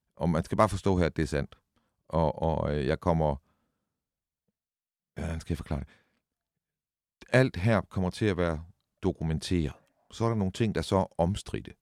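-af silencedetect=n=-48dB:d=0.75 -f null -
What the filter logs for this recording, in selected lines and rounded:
silence_start: 3.38
silence_end: 5.17 | silence_duration: 1.79
silence_start: 5.93
silence_end: 7.21 | silence_duration: 1.29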